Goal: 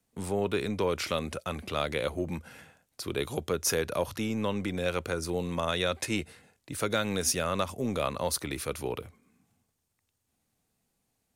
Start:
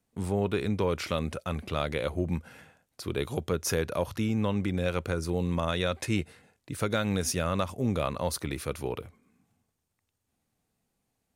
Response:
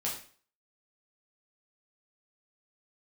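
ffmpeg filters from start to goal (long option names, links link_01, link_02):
-filter_complex "[0:a]equalizer=frequency=11000:width_type=o:width=2.8:gain=4,acrossover=split=200[link_01][link_02];[link_01]asoftclip=type=tanh:threshold=-39dB[link_03];[link_03][link_02]amix=inputs=2:normalize=0"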